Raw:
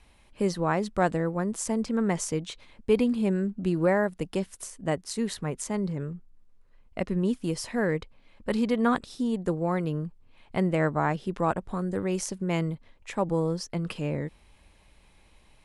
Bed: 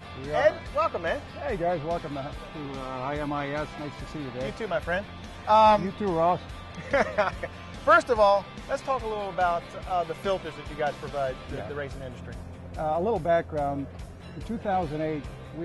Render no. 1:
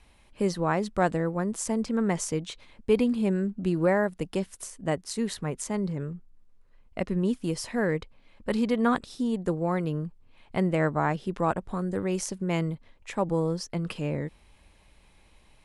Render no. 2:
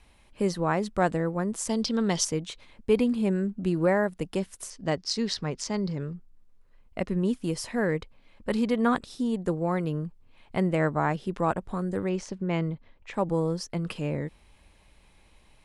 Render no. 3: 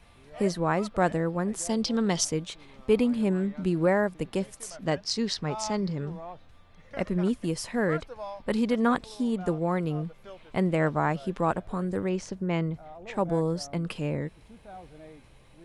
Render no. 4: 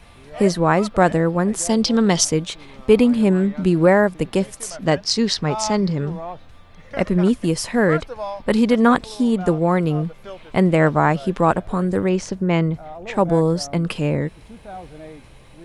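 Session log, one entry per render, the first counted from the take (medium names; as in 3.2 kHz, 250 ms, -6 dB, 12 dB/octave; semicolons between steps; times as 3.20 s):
no audible change
1.69–2.25 s: high-order bell 4.2 kHz +14 dB 1.2 oct; 4.70–6.15 s: resonant low-pass 5.1 kHz, resonance Q 4; 12.09–13.14 s: distance through air 130 m
add bed -18.5 dB
trim +9.5 dB; peak limiter -2 dBFS, peak gain reduction 1.5 dB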